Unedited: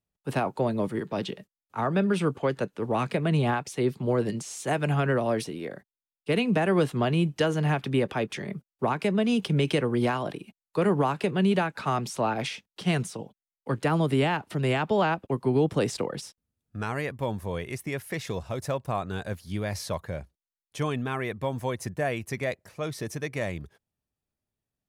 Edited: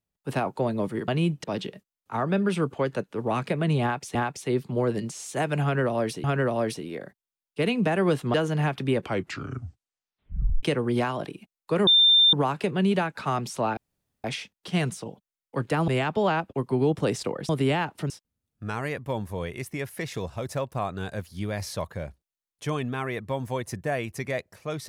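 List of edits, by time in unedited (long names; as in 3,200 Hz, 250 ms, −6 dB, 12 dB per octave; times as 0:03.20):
0:03.46–0:03.79: repeat, 2 plays
0:04.94–0:05.55: repeat, 2 plays
0:07.04–0:07.40: move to 0:01.08
0:08.01: tape stop 1.68 s
0:10.93: insert tone 3,590 Hz −14 dBFS 0.46 s
0:12.37: splice in room tone 0.47 s
0:14.01–0:14.62: move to 0:16.23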